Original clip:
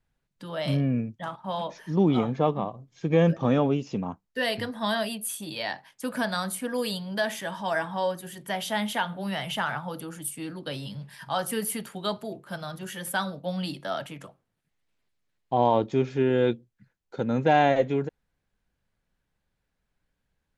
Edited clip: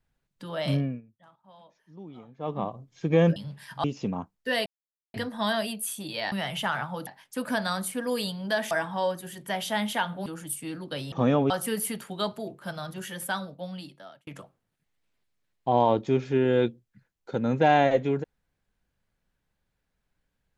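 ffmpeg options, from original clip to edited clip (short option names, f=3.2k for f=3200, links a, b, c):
-filter_complex "[0:a]asplit=13[a][b][c][d][e][f][g][h][i][j][k][l][m];[a]atrim=end=1.01,asetpts=PTS-STARTPTS,afade=t=out:st=0.75:d=0.26:silence=0.0749894[n];[b]atrim=start=1.01:end=2.38,asetpts=PTS-STARTPTS,volume=-22.5dB[o];[c]atrim=start=2.38:end=3.362,asetpts=PTS-STARTPTS,afade=t=in:d=0.26:silence=0.0749894[p];[d]atrim=start=10.868:end=11.352[q];[e]atrim=start=3.738:end=4.56,asetpts=PTS-STARTPTS,afade=t=out:st=0.818:d=0.004:c=hsin,apad=pad_dur=0.48[r];[f]atrim=start=4.56:end=5.742,asetpts=PTS-STARTPTS,afade=t=in:d=0.004:c=hsin[s];[g]atrim=start=9.258:end=10.012[t];[h]atrim=start=5.738:end=7.382[u];[i]atrim=start=7.708:end=9.262[v];[j]atrim=start=10.008:end=10.872[w];[k]atrim=start=3.358:end=3.742[x];[l]atrim=start=11.348:end=14.12,asetpts=PTS-STARTPTS,afade=t=out:st=1.522:d=1.25[y];[m]atrim=start=14.12,asetpts=PTS-STARTPTS,afade=t=in:d=0.004:c=hsin[z];[n][o][p]concat=n=3:v=0:a=1[aa];[aa][q]acrossfade=d=0.004:c1=hsin:c2=hsin[ab];[r][s]concat=n=2:v=0:a=1[ac];[ab][ac]acrossfade=d=0.004:c1=hsin:c2=hsin[ad];[ad][t]acrossfade=d=0.004:c1=hsin:c2=hsin[ae];[ae][u]acrossfade=d=0.004:c1=hsin:c2=hsin[af];[af][v]acrossfade=d=0.004:c1=hsin:c2=hsin[ag];[ag][w]acrossfade=d=0.004:c1=hsin:c2=hsin[ah];[ah][x]acrossfade=d=0.004:c1=hsin:c2=hsin[ai];[y][z]concat=n=2:v=0:a=1[aj];[ai][aj]acrossfade=d=0.004:c1=hsin:c2=hsin"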